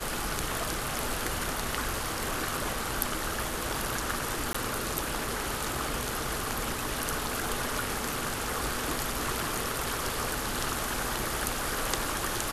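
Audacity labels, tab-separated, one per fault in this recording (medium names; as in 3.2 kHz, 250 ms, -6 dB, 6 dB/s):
4.530000	4.540000	dropout 15 ms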